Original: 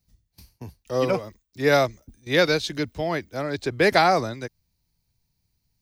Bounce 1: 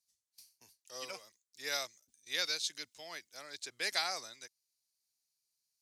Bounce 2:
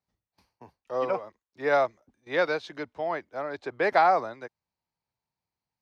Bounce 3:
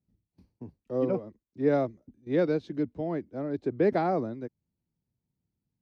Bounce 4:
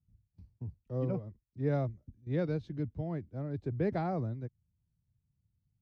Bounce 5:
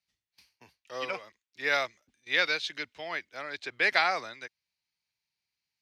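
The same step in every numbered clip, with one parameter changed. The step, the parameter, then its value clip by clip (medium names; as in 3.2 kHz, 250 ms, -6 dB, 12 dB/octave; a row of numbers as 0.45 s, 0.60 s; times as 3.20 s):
band-pass filter, frequency: 7.8 kHz, 920 Hz, 270 Hz, 110 Hz, 2.4 kHz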